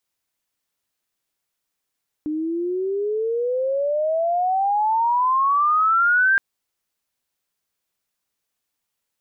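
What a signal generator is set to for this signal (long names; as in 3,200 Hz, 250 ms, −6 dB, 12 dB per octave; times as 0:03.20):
glide logarithmic 300 Hz → 1,600 Hz −22 dBFS → −13.5 dBFS 4.12 s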